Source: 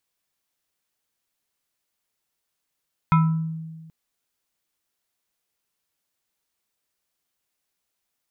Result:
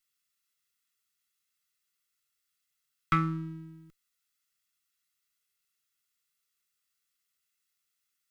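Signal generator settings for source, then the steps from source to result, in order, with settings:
FM tone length 0.78 s, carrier 161 Hz, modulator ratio 7.16, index 1, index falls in 0.60 s exponential, decay 1.52 s, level -12 dB
comb filter that takes the minimum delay 1.5 ms; Butterworth band-stop 700 Hz, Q 1; bass shelf 330 Hz -10 dB

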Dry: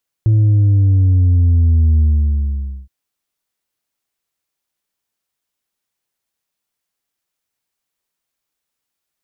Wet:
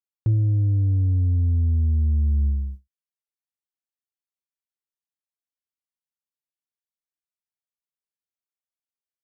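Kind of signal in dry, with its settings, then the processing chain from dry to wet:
sub drop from 110 Hz, over 2.62 s, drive 3 dB, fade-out 0.88 s, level -9 dB
peak limiter -15.5 dBFS; reverb removal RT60 0.51 s; gate with hold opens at -21 dBFS

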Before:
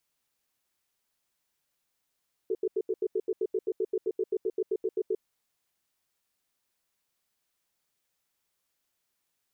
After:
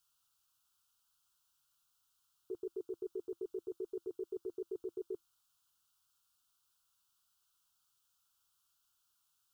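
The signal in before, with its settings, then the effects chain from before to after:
cadence 377 Hz, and 436 Hz, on 0.05 s, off 0.08 s, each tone -28 dBFS 2.73 s
FFT filter 120 Hz 0 dB, 230 Hz -13 dB, 340 Hz -7 dB, 530 Hz -17 dB, 800 Hz -5 dB, 1.4 kHz +7 dB, 2 kHz -24 dB, 2.9 kHz +2 dB

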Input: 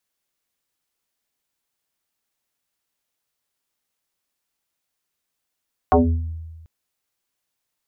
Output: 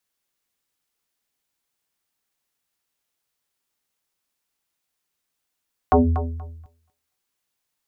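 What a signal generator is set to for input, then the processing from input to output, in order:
FM tone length 0.74 s, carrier 81.2 Hz, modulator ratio 2.06, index 6.5, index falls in 0.58 s exponential, decay 1.36 s, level -9.5 dB
peaking EQ 610 Hz -2.5 dB 0.22 oct; thinning echo 239 ms, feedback 19%, high-pass 420 Hz, level -10.5 dB

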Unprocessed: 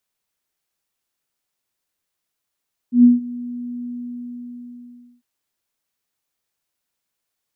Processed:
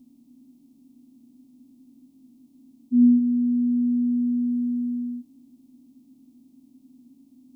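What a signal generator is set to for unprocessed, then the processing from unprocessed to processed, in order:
ADSR sine 243 Hz, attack 116 ms, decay 162 ms, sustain -21 dB, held 0.93 s, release 1370 ms -5 dBFS
spectral levelling over time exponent 0.4; static phaser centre 310 Hz, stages 8

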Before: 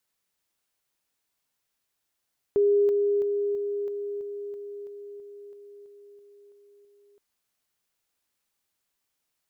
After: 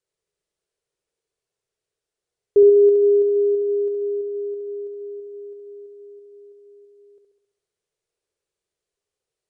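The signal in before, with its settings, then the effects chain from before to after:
level ladder 407 Hz -17.5 dBFS, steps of -3 dB, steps 14, 0.33 s 0.00 s
FFT filter 160 Hz 0 dB, 260 Hz -12 dB, 410 Hz +11 dB, 810 Hz -7 dB; on a send: flutter echo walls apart 11.5 m, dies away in 0.78 s; on the sum: resampled via 22.05 kHz

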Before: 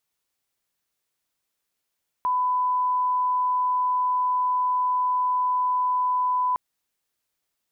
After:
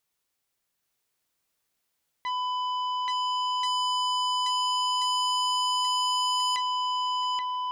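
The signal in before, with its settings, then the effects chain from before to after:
line-up tone -20 dBFS 4.31 s
peak limiter -23.5 dBFS; shuffle delay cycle 1383 ms, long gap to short 1.5:1, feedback 39%, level -4 dB; transformer saturation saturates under 3.2 kHz

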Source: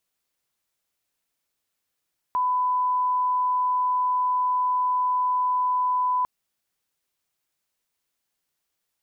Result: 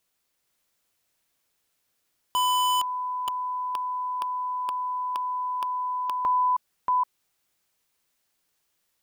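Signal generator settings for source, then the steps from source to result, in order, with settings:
line-up tone -20 dBFS 3.90 s
chunks repeated in reverse 469 ms, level -3 dB; in parallel at -5.5 dB: integer overflow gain 21.5 dB

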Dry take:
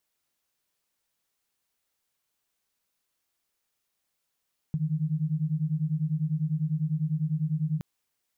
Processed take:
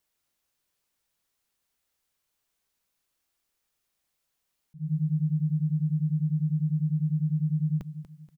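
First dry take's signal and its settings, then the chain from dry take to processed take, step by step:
beating tones 150 Hz, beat 10 Hz, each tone -28 dBFS 3.07 s
bass shelf 79 Hz +6 dB; slow attack 194 ms; feedback delay 239 ms, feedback 32%, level -12 dB

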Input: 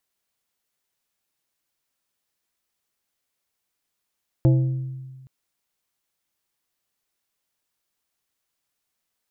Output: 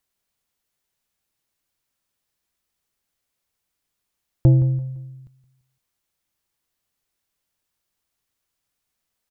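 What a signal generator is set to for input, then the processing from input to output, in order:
glass hit plate, length 0.82 s, lowest mode 131 Hz, decay 1.53 s, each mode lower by 7 dB, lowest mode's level -12 dB
bass shelf 140 Hz +8.5 dB; feedback delay 170 ms, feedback 31%, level -14.5 dB

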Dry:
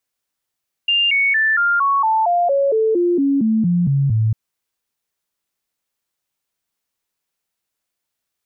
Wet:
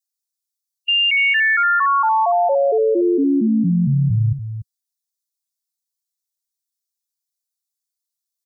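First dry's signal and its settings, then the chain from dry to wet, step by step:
stepped sine 2.8 kHz down, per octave 3, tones 15, 0.23 s, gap 0.00 s -13 dBFS
expander on every frequency bin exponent 1.5; on a send: delay 290 ms -10.5 dB

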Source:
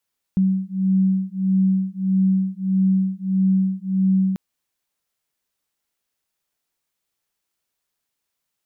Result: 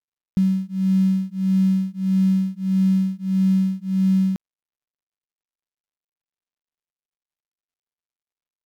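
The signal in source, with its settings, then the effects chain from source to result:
beating tones 189 Hz, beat 1.6 Hz, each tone -19.5 dBFS 3.99 s
dead-time distortion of 0.13 ms

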